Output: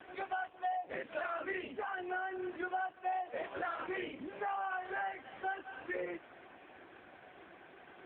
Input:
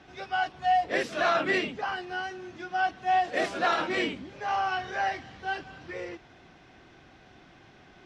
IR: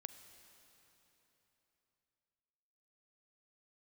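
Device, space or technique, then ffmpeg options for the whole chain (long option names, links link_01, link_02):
voicemail: -af "highpass=310,lowpass=2700,acompressor=threshold=-38dB:ratio=10,volume=5dB" -ar 8000 -c:a libopencore_amrnb -b:a 5150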